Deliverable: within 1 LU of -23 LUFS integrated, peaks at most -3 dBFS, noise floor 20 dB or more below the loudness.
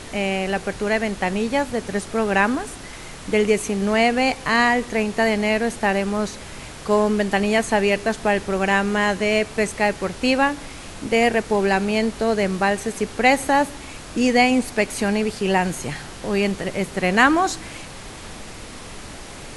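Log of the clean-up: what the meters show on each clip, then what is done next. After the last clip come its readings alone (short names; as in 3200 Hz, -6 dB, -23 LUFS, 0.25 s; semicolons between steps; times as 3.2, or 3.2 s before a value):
noise floor -37 dBFS; noise floor target -41 dBFS; loudness -20.5 LUFS; peak -2.0 dBFS; loudness target -23.0 LUFS
-> noise print and reduce 6 dB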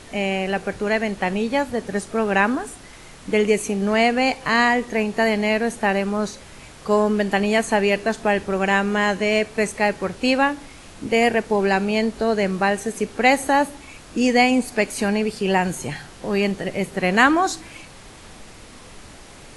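noise floor -43 dBFS; loudness -20.5 LUFS; peak -2.0 dBFS; loudness target -23.0 LUFS
-> gain -2.5 dB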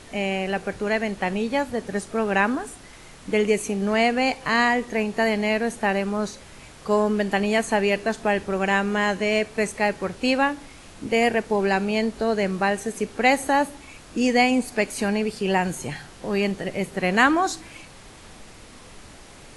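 loudness -23.0 LUFS; peak -4.5 dBFS; noise floor -46 dBFS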